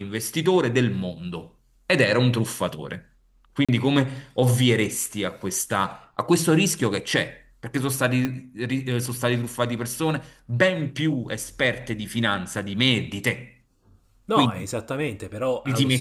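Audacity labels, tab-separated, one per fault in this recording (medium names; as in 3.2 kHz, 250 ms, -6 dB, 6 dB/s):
3.650000	3.690000	dropout 36 ms
8.250000	8.250000	pop -12 dBFS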